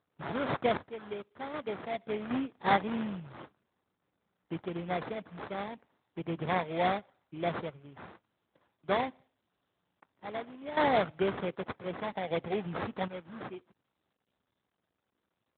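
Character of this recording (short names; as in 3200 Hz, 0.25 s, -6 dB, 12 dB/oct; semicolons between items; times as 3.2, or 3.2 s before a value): a buzz of ramps at a fixed pitch in blocks of 8 samples; random-step tremolo 1.3 Hz, depth 85%; aliases and images of a low sample rate 2800 Hz, jitter 20%; AMR-NB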